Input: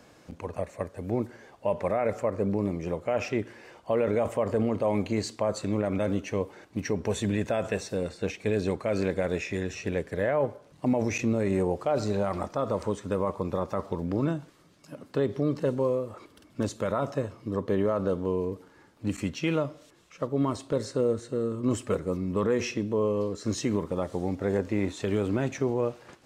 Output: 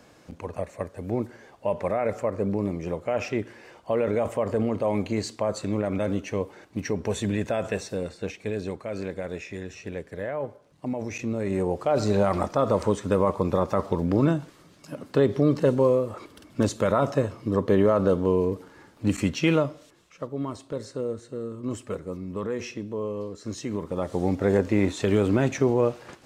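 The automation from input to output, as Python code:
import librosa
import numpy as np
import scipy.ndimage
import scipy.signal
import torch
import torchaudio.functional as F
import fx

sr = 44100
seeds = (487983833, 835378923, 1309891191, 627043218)

y = fx.gain(x, sr, db=fx.line((7.79, 1.0), (8.86, -5.0), (11.08, -5.0), (12.19, 6.0), (19.5, 6.0), (20.36, -4.5), (23.64, -4.5), (24.26, 5.5)))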